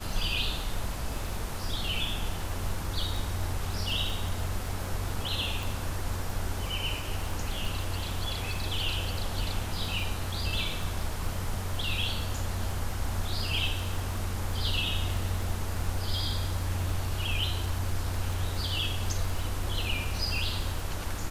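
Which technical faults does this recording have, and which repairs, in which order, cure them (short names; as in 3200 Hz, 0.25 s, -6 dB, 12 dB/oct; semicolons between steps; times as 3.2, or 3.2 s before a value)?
crackle 29/s -33 dBFS
5.63 pop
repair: de-click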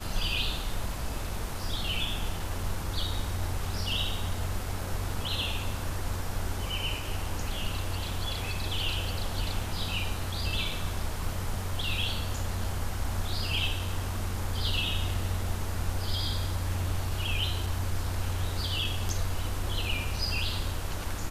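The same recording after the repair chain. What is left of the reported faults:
none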